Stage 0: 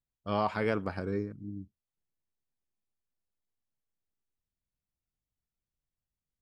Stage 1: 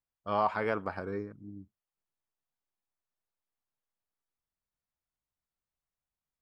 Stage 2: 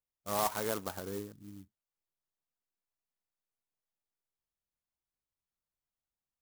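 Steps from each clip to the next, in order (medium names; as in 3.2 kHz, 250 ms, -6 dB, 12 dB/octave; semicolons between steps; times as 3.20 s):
peaking EQ 1 kHz +10.5 dB 2.3 oct; trim -7 dB
sampling jitter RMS 0.1 ms; trim -3.5 dB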